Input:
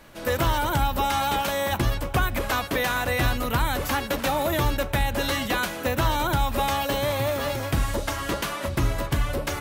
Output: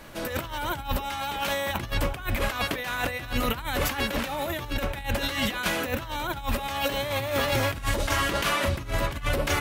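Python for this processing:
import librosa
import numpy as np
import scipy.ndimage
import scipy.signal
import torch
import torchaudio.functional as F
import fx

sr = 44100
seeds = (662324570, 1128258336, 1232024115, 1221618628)

y = fx.dynamic_eq(x, sr, hz=2500.0, q=0.92, threshold_db=-41.0, ratio=4.0, max_db=5)
y = fx.over_compress(y, sr, threshold_db=-27.0, ratio=-0.5)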